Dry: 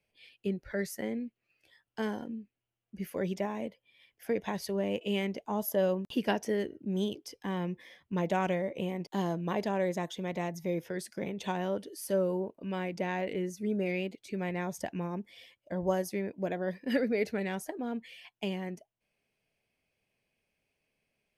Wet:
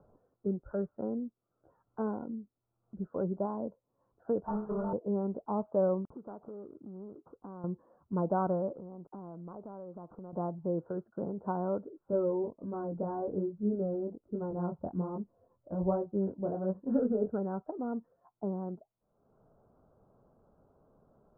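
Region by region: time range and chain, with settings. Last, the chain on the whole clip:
4.47–4.93 s: inharmonic resonator 210 Hz, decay 0.5 s, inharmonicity 0.008 + overdrive pedal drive 37 dB, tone 1.4 kHz, clips at -24 dBFS
6.14–7.64 s: median filter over 25 samples + compression 4:1, threshold -41 dBFS + tilt EQ +1.5 dB/octave
8.75–10.33 s: median filter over 15 samples + compression 5:1, threshold -43 dBFS
11.90–17.30 s: tilt EQ -2 dB/octave + chorus 1.2 Hz, delay 18.5 ms, depth 6.1 ms
whole clip: upward compressor, threshold -45 dBFS; steep low-pass 1.4 kHz 96 dB/octave

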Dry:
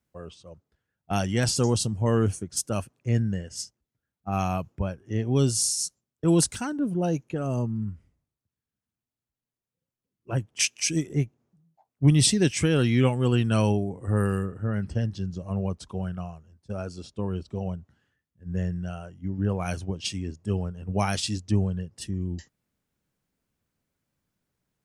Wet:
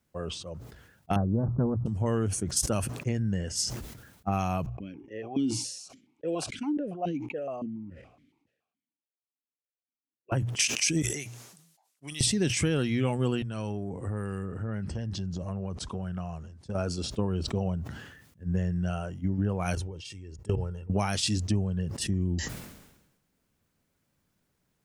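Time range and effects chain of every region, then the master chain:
1.16–1.86 s: brick-wall FIR low-pass 1.4 kHz + bass shelf 380 Hz +9.5 dB + loudspeaker Doppler distortion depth 0.36 ms
4.66–10.32 s: gate -55 dBFS, range -11 dB + de-esser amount 30% + stepped vowel filter 7.1 Hz
11.02–12.21 s: low-pass 9.8 kHz + differentiator
13.42–16.75 s: low-pass 9.8 kHz 24 dB/octave + compression 5:1, threshold -35 dBFS
19.75–20.90 s: comb 2.2 ms, depth 57% + level held to a coarse grid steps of 24 dB
whole clip: compression, threshold -29 dBFS; hum notches 60/120 Hz; decay stretcher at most 55 dB/s; trim +5 dB

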